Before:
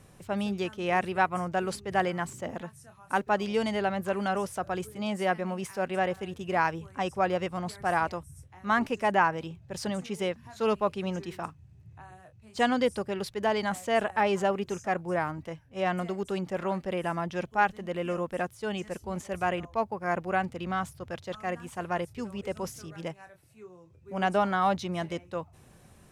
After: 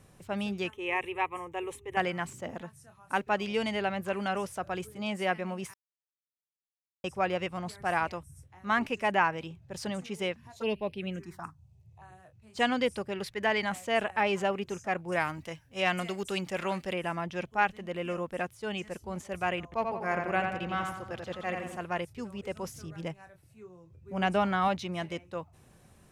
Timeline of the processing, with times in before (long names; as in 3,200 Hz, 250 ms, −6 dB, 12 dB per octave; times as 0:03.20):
0:00.70–0:01.97: phaser with its sweep stopped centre 970 Hz, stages 8
0:05.74–0:07.04: silence
0:10.52–0:12.02: phaser swept by the level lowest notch 220 Hz, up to 1,300 Hz, full sweep at −25.5 dBFS
0:13.21–0:13.65: parametric band 1,900 Hz +7.5 dB 0.53 octaves
0:15.12–0:16.93: high-shelf EQ 2,300 Hz +11 dB
0:19.63–0:21.77: feedback echo with a low-pass in the loop 87 ms, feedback 52%, low-pass 4,300 Hz, level −4 dB
0:22.74–0:24.68: low-shelf EQ 170 Hz +9 dB
whole clip: dynamic equaliser 2,500 Hz, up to +7 dB, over −47 dBFS, Q 1.7; level −3 dB